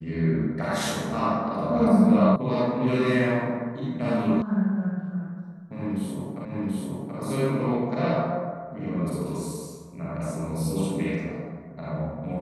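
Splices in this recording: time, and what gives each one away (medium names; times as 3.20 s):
2.36 s: sound stops dead
4.42 s: sound stops dead
6.45 s: repeat of the last 0.73 s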